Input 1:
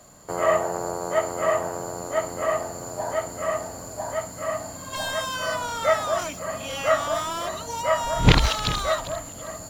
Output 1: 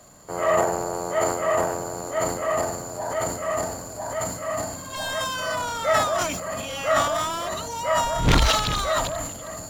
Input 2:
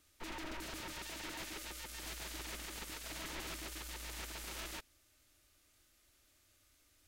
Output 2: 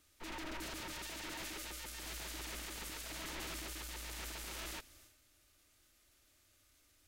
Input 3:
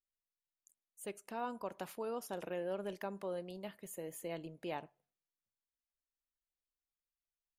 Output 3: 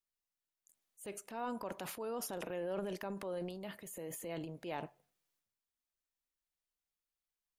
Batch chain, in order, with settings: overloaded stage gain 11.5 dB; transient shaper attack -3 dB, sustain +9 dB

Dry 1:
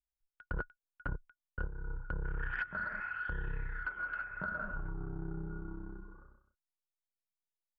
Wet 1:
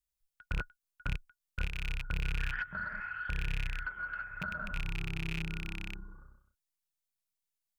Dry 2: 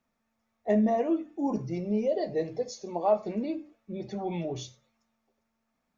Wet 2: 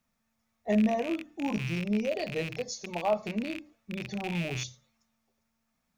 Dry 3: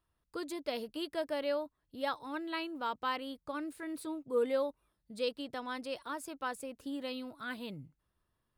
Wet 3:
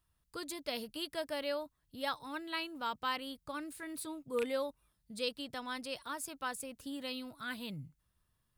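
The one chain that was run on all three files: rattling part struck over -42 dBFS, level -28 dBFS; EQ curve 160 Hz 0 dB, 230 Hz -4 dB, 340 Hz -9 dB, 9800 Hz +3 dB; gain +3.5 dB

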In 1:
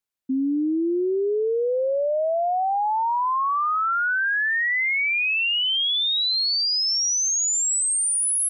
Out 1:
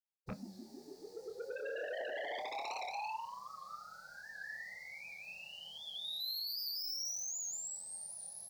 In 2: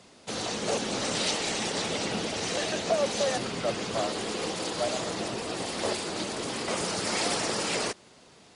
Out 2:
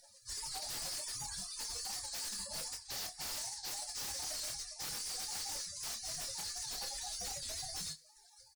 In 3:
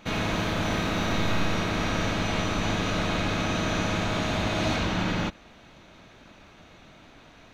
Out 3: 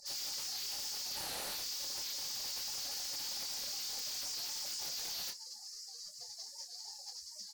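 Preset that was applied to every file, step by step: spectral gate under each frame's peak -30 dB weak; EQ curve 190 Hz 0 dB, 300 Hz -26 dB, 550 Hz +9 dB, 800 Hz +1 dB, 1200 Hz -20 dB, 2100 Hz -15 dB, 3100 Hz -17 dB, 4500 Hz +7 dB, 7200 Hz -4 dB, 11000 Hz -10 dB; reverse; compressor 10:1, threshold -58 dBFS; reverse; small resonant body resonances 240/840/1200/1700 Hz, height 13 dB, ringing for 20 ms; in parallel at -4 dB: sine folder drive 18 dB, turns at -43.5 dBFS; on the sum: doubler 26 ms -7.5 dB; FDN reverb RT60 0.35 s, low-frequency decay 0.8×, high-frequency decay 0.9×, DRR 14 dB; record warp 78 rpm, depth 100 cents; gain +7.5 dB

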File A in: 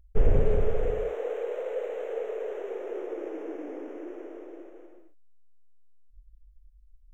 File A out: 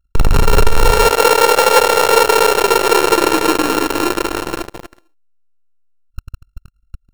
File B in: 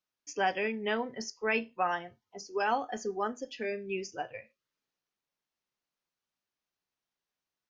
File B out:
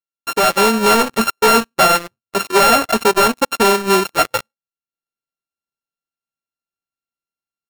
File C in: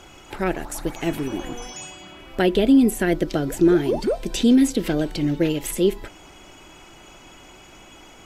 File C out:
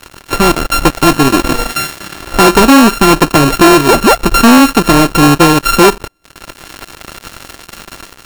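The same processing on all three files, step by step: sample sorter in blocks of 32 samples; transient shaper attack +5 dB, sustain -8 dB; sample leveller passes 5; AGC gain up to 5.5 dB

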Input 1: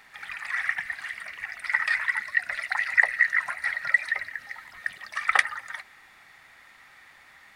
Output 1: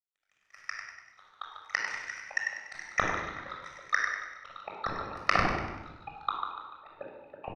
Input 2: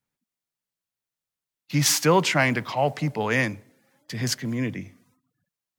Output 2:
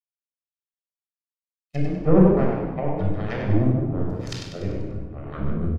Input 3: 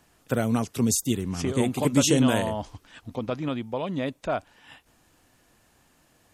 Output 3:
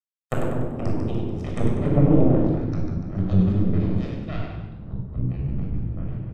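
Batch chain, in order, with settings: power-law curve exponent 3; treble ducked by the level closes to 470 Hz, closed at -35.5 dBFS; frequency-shifting echo 97 ms, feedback 47%, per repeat +30 Hz, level -6 dB; echoes that change speed 0.376 s, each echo -7 st, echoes 3, each echo -6 dB; shoebox room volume 3000 m³, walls furnished, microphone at 6.3 m; gain +7.5 dB

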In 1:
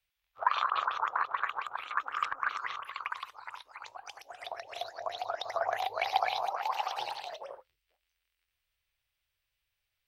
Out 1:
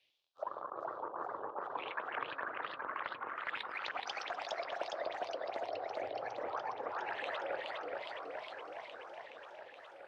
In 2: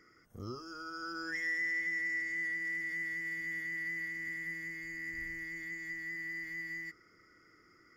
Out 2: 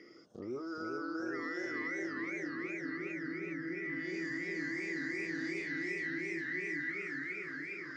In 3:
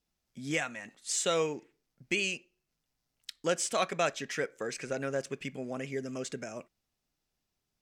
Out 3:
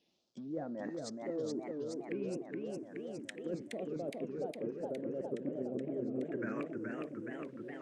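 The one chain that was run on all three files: in parallel at -8.5 dB: sample gate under -47 dBFS; on the sum: phaser stages 4, 0.26 Hz, lowest notch 640–2800 Hz; treble ducked by the level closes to 330 Hz, closed at -33 dBFS; speaker cabinet 250–8700 Hz, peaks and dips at 340 Hz +4 dB, 570 Hz +5 dB, 1700 Hz +5 dB; reverse; compressor 8:1, threshold -49 dBFS; reverse; warbling echo 0.417 s, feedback 76%, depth 196 cents, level -3 dB; gain +11 dB

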